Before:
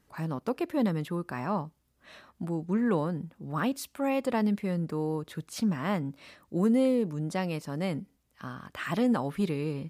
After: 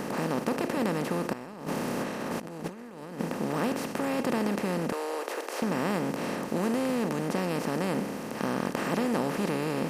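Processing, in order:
compressor on every frequency bin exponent 0.2
0:01.33–0:03.20: compressor whose output falls as the input rises −27 dBFS, ratio −0.5
0:04.92–0:05.62: inverse Chebyshev high-pass filter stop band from 190 Hz, stop band 40 dB
level −7.5 dB

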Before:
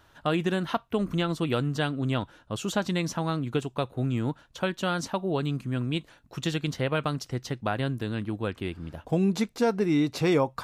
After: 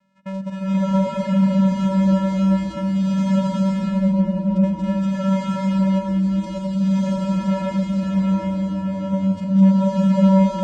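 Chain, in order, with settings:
channel vocoder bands 4, square 192 Hz
frozen spectrum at 0:03.39, 0.77 s
slow-attack reverb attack 680 ms, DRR −11.5 dB

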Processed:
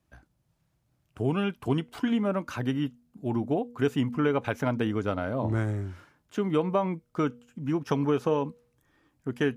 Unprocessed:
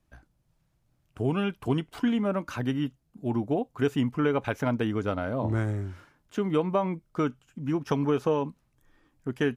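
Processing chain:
high-pass filter 55 Hz
hum removal 240.4 Hz, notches 2

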